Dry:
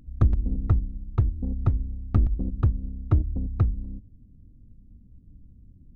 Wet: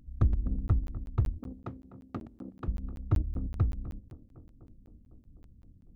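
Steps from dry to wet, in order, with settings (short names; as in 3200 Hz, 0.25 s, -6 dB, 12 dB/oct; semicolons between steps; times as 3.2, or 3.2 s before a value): 1.38–2.68 HPF 260 Hz 12 dB/oct; tape echo 0.252 s, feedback 86%, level -13 dB, low-pass 1300 Hz; crackling interface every 0.19 s, samples 512, zero, from 0.68; gain -5.5 dB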